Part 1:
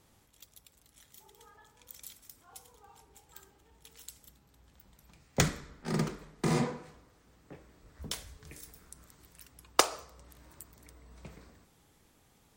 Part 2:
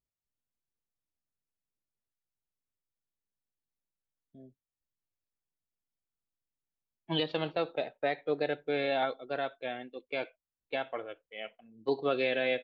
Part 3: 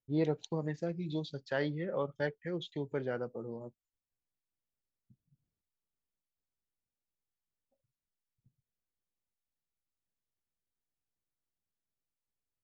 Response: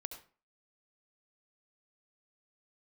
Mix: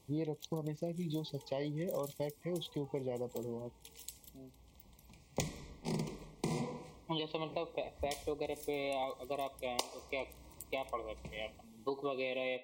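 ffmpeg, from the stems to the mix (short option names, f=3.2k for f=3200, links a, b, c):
-filter_complex "[0:a]volume=0dB[a];[1:a]equalizer=f=1.1k:t=o:w=0.34:g=11,volume=-2.5dB,asplit=2[b][c];[c]volume=-14.5dB[d];[2:a]volume=1dB[e];[3:a]atrim=start_sample=2205[f];[d][f]afir=irnorm=-1:irlink=0[g];[a][b][e][g]amix=inputs=4:normalize=0,asuperstop=centerf=1500:order=12:qfactor=1.8,acompressor=threshold=-34dB:ratio=6"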